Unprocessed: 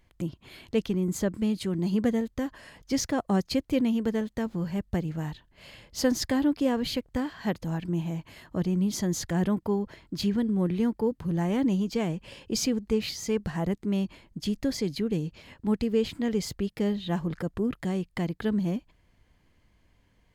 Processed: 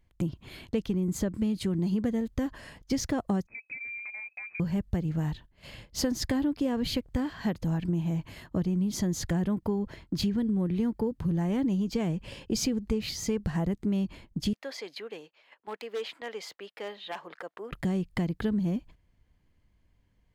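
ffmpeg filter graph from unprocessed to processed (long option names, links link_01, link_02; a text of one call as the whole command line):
ffmpeg -i in.wav -filter_complex "[0:a]asettb=1/sr,asplit=3[link_01][link_02][link_03];[link_01]atrim=end=3.474[link_04];[link_02]atrim=start=3.47:end=4.6,asetpts=PTS-STARTPTS,afade=type=in:duration=0.004:curve=qsin,afade=type=out:start_time=1.126:duration=0.004:curve=qsin,equalizer=frequency=810:width=0.46:gain=-6,acompressor=threshold=-37dB:ratio=16:attack=3.2:release=140:knee=1:detection=peak,lowpass=frequency=2200:width_type=q:width=0.5098,lowpass=frequency=2200:width_type=q:width=0.6013,lowpass=frequency=2200:width_type=q:width=0.9,lowpass=frequency=2200:width_type=q:width=2.563,afreqshift=-2600[link_05];[link_03]atrim=start=4.596[link_06];[link_04][link_05]acrossfade=duration=0.004:curve1=hsin:curve2=qsin[link_07];[link_07][link_06]acrossfade=duration=0.004:curve1=qsin:curve2=hsin,asettb=1/sr,asplit=3[link_08][link_09][link_10];[link_08]atrim=end=14.534[link_11];[link_09]atrim=start=14.53:end=17.72,asetpts=PTS-STARTPTS,afade=type=in:duration=0.004:curve=qsin,afade=type=out:start_time=3.186:duration=0.004:curve=qsin,acrossover=split=530 3900:gain=0.0631 1 0.224[link_12][link_13][link_14];[link_12][link_13][link_14]amix=inputs=3:normalize=0,aeval=exprs='0.0376*(abs(mod(val(0)/0.0376+3,4)-2)-1)':channel_layout=same,highpass=340[link_15];[link_10]atrim=start=17.716[link_16];[link_11][link_15]acrossfade=duration=0.004:curve1=hsin:curve2=qsin[link_17];[link_17][link_16]acrossfade=duration=0.004:curve1=qsin:curve2=hsin,agate=range=-10dB:threshold=-50dB:ratio=16:detection=peak,lowshelf=frequency=220:gain=7.5,acompressor=threshold=-26dB:ratio=6,volume=1dB" out.wav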